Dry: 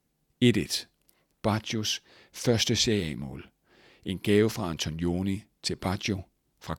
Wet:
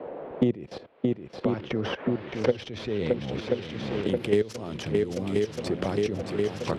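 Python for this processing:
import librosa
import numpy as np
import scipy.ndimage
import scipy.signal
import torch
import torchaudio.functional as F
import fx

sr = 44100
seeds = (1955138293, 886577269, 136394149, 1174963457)

p1 = fx.tracing_dist(x, sr, depth_ms=0.072)
p2 = fx.low_shelf(p1, sr, hz=190.0, db=5.0)
p3 = fx.dmg_noise_band(p2, sr, seeds[0], low_hz=220.0, high_hz=3400.0, level_db=-55.0)
p4 = fx.filter_sweep_lowpass(p3, sr, from_hz=600.0, to_hz=8200.0, start_s=0.38, end_s=4.16, q=0.95)
p5 = fx.level_steps(p4, sr, step_db=19)
p6 = scipy.signal.sosfilt(scipy.signal.butter(2, 78.0, 'highpass', fs=sr, output='sos'), p5)
p7 = fx.peak_eq(p6, sr, hz=500.0, db=11.0, octaves=0.88)
p8 = p7 + fx.echo_swing(p7, sr, ms=1030, ratio=1.5, feedback_pct=53, wet_db=-9.5, dry=0)
p9 = fx.band_squash(p8, sr, depth_pct=100)
y = p9 * 10.0 ** (1.5 / 20.0)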